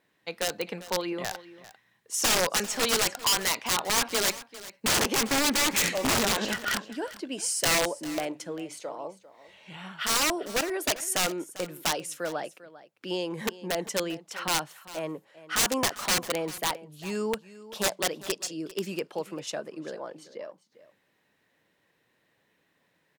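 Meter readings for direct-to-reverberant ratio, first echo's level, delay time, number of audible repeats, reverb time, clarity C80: none, -17.0 dB, 0.397 s, 1, none, none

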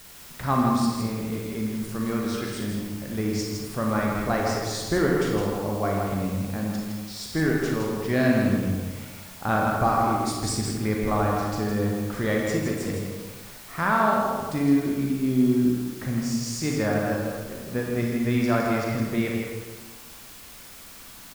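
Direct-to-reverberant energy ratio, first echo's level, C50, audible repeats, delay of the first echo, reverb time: -2.5 dB, -5.5 dB, -1.0 dB, 1, 0.162 s, 1.5 s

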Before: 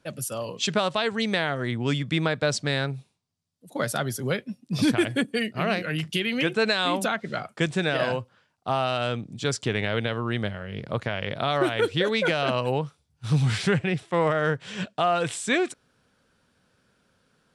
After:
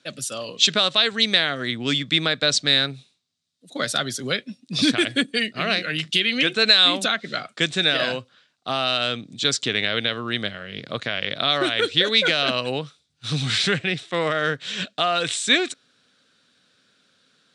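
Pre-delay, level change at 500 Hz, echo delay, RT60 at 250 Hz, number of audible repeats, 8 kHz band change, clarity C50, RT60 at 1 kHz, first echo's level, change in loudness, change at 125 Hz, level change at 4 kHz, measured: none, -0.5 dB, none, none, none, +6.0 dB, none, none, none, +5.0 dB, -4.5 dB, +12.0 dB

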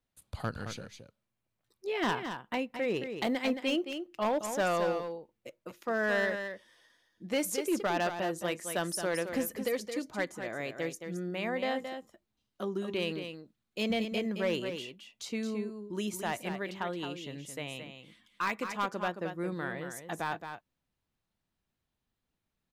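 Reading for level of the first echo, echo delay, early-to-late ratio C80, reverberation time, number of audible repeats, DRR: -8.0 dB, 0.22 s, none, none, 1, none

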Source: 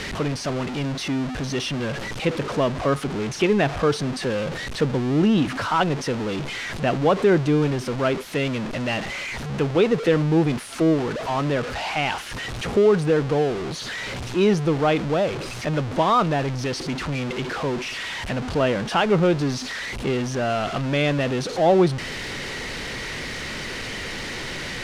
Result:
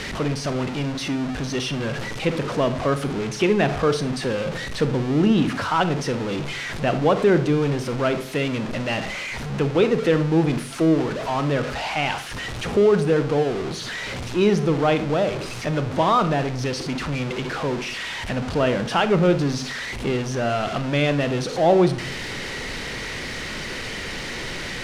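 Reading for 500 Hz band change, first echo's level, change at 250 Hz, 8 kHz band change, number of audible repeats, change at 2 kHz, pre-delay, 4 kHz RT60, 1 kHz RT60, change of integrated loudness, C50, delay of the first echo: +0.5 dB, none, +0.5 dB, +0.5 dB, none, +0.5 dB, 31 ms, 0.30 s, 0.40 s, +0.5 dB, 13.0 dB, none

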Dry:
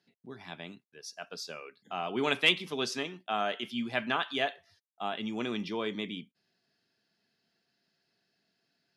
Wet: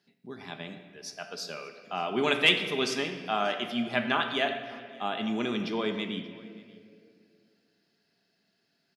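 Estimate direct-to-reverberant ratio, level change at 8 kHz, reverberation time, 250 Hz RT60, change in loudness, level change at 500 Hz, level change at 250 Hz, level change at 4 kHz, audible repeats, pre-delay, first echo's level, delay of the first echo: 6.0 dB, +3.0 dB, 2.3 s, 2.8 s, +3.0 dB, +4.0 dB, +4.0 dB, +3.0 dB, 1, 5 ms, -23.5 dB, 0.582 s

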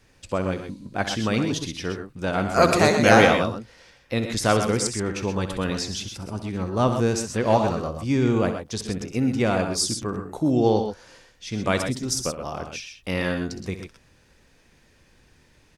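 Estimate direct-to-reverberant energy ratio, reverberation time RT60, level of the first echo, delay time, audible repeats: none, none, -11.5 dB, 64 ms, 2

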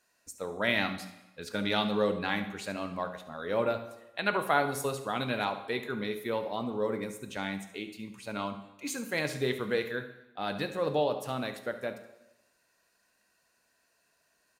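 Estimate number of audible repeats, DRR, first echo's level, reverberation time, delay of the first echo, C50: 1, 7.5 dB, -15.0 dB, 0.95 s, 71 ms, 10.0 dB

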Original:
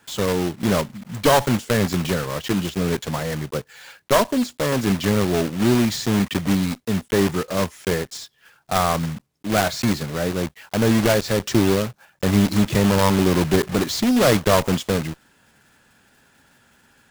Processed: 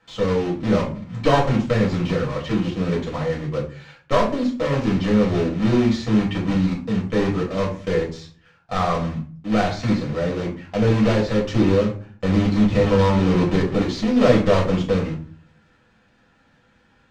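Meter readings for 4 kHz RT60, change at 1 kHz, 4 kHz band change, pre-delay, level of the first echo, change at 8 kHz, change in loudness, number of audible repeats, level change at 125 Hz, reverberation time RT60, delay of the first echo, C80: 0.25 s, -1.5 dB, -5.5 dB, 4 ms, none, under -10 dB, 0.0 dB, none, +1.5 dB, 0.45 s, none, 14.0 dB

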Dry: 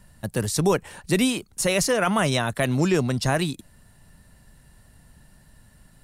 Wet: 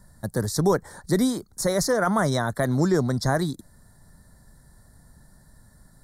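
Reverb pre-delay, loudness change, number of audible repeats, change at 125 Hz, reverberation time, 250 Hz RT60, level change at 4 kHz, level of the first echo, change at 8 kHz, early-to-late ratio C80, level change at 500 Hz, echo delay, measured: none, -1.0 dB, none, 0.0 dB, none, none, -5.5 dB, none, -3.5 dB, none, 0.0 dB, none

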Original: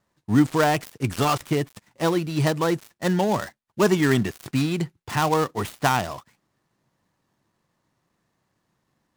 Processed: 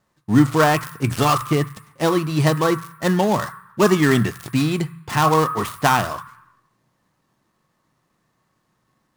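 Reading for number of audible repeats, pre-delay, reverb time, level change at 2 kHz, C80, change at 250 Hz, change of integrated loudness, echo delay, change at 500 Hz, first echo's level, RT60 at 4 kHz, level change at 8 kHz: none, 3 ms, 0.95 s, +4.0 dB, 14.0 dB, +3.5 dB, +4.0 dB, none, +3.5 dB, none, 0.95 s, +4.0 dB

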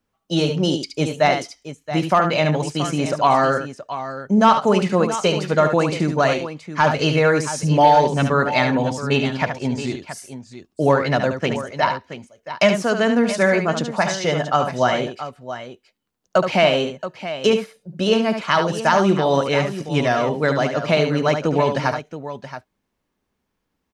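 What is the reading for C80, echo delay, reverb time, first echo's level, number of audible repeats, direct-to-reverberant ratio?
none, 72 ms, none, -7.5 dB, 2, none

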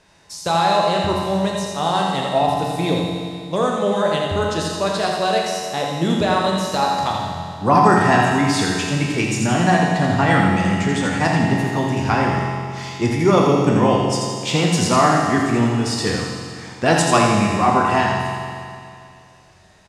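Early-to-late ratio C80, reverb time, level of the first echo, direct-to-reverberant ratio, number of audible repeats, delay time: 0.5 dB, 2.4 s, -5.5 dB, -2.5 dB, 1, 84 ms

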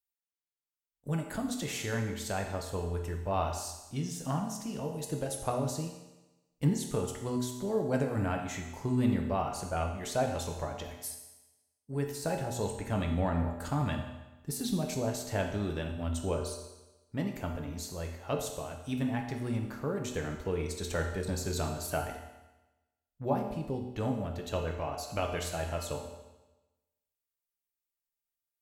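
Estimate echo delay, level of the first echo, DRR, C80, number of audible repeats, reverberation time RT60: none, none, 1.5 dB, 8.0 dB, none, 1.1 s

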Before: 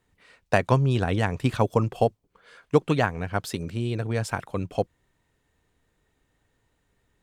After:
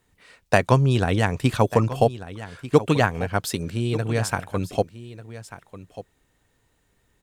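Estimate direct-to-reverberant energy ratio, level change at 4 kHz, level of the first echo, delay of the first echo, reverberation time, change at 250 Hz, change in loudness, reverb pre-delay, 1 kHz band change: none, +5.0 dB, -15.0 dB, 1.192 s, none, +3.0 dB, +3.5 dB, none, +3.5 dB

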